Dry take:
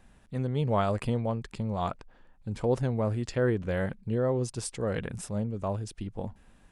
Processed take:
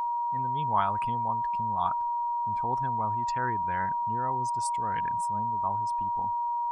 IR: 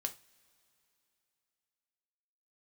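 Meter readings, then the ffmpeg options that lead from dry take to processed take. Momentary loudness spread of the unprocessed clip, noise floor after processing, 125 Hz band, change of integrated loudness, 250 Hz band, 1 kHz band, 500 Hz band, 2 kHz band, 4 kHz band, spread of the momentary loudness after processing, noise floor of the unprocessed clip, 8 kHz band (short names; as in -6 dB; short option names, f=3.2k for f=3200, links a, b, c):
11 LU, -30 dBFS, -9.0 dB, +2.0 dB, -9.5 dB, +14.0 dB, -12.0 dB, +1.0 dB, n/a, 2 LU, -59 dBFS, -2.5 dB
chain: -af "afftdn=nr=19:nf=-42,aeval=exprs='val(0)+0.0224*sin(2*PI*950*n/s)':c=same,lowshelf=f=700:t=q:w=3:g=-8.5"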